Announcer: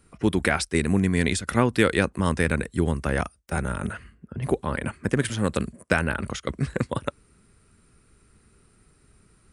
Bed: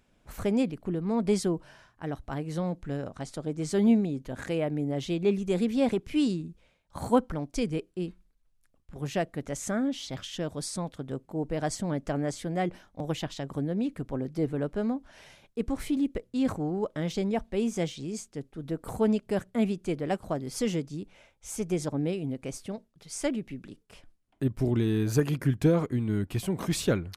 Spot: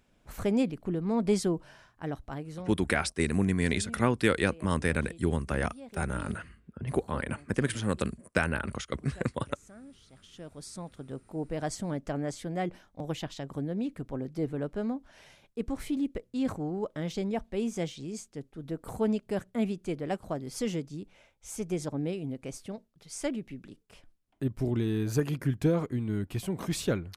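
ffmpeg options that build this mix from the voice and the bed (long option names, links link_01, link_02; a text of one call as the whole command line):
ffmpeg -i stem1.wav -i stem2.wav -filter_complex "[0:a]adelay=2450,volume=-5dB[link_01];[1:a]volume=18dB,afade=type=out:start_time=2.06:duration=0.78:silence=0.0891251,afade=type=in:start_time=10.1:duration=1.32:silence=0.11885[link_02];[link_01][link_02]amix=inputs=2:normalize=0" out.wav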